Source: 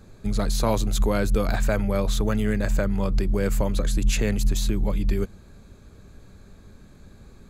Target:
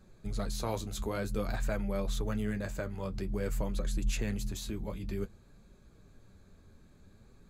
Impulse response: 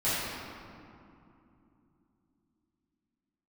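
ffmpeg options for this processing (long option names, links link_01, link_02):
-af "flanger=delay=5.4:depth=7.4:regen=-43:speed=0.52:shape=sinusoidal,volume=-6.5dB"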